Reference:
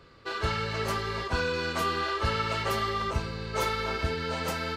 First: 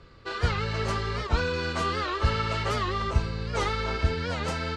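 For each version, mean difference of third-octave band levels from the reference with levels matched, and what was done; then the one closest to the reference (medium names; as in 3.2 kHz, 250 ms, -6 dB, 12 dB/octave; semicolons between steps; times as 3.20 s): 2.5 dB: low-pass 8.6 kHz 24 dB/octave; bass shelf 110 Hz +10 dB; warped record 78 rpm, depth 160 cents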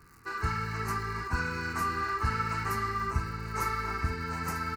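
5.0 dB: crackle 200 per s -41 dBFS; static phaser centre 1.4 kHz, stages 4; on a send: delay 941 ms -11.5 dB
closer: first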